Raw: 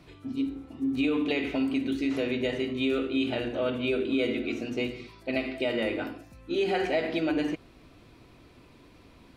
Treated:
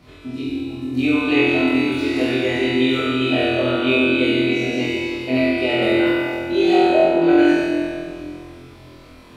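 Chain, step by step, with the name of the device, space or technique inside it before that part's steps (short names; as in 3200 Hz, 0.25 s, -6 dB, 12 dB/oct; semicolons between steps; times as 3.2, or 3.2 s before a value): 6.74–7.22 inverse Chebyshev low-pass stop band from 5300 Hz, stop band 70 dB; tunnel (flutter echo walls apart 4 m, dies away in 1.3 s; reverb RT60 2.1 s, pre-delay 3 ms, DRR -1.5 dB); gain +2 dB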